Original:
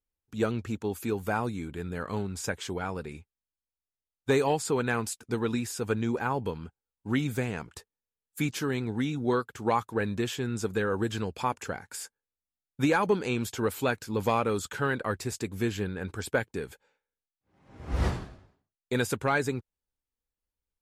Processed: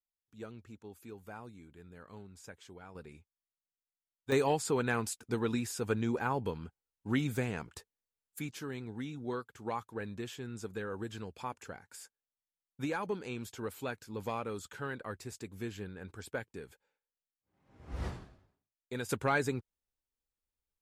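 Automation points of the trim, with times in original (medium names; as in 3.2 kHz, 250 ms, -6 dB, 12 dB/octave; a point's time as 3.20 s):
-18 dB
from 2.95 s -11.5 dB
from 4.32 s -3.5 dB
from 8.39 s -11 dB
from 19.09 s -3.5 dB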